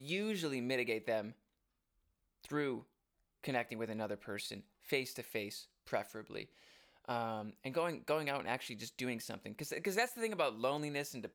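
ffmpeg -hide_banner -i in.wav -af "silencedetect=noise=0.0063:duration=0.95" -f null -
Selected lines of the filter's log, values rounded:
silence_start: 1.31
silence_end: 2.44 | silence_duration: 1.13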